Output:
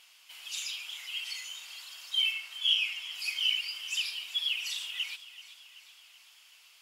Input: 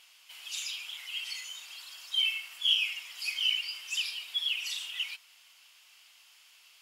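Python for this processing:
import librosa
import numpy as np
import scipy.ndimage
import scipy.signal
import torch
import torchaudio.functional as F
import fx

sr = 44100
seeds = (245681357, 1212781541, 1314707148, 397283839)

y = fx.high_shelf(x, sr, hz=11000.0, db=-7.5, at=(2.31, 3.13))
y = fx.echo_feedback(y, sr, ms=381, feedback_pct=56, wet_db=-16.0)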